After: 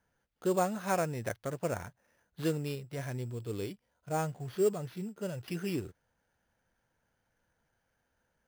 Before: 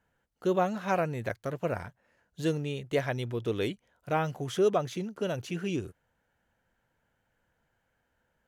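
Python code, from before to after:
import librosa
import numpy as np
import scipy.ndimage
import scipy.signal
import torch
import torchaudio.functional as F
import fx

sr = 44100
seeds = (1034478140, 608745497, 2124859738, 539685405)

y = fx.hpss(x, sr, part='percussive', gain_db=-13, at=(2.75, 5.48))
y = fx.sample_hold(y, sr, seeds[0], rate_hz=7800.0, jitter_pct=0)
y = y * 10.0 ** (-2.5 / 20.0)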